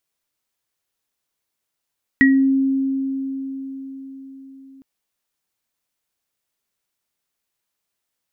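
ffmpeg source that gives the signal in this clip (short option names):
-f lavfi -i "aevalsrc='0.316*pow(10,-3*t/4.88)*sin(2*PI*269*t)+0.376*pow(10,-3*t/0.29)*sin(2*PI*1910*t)':d=2.61:s=44100"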